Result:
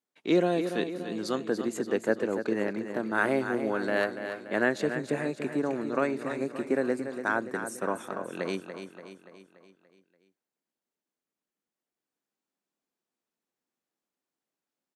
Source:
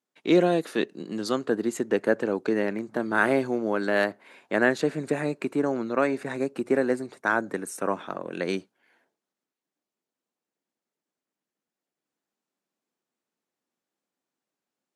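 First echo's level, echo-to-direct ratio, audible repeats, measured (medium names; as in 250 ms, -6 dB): -9.0 dB, -7.5 dB, 5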